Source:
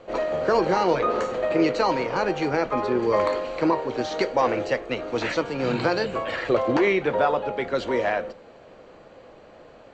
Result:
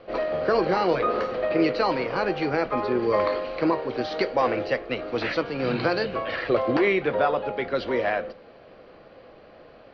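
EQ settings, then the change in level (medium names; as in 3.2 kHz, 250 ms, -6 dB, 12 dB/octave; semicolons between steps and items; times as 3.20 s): elliptic low-pass 5.1 kHz, stop band 50 dB; band-stop 910 Hz, Q 11; 0.0 dB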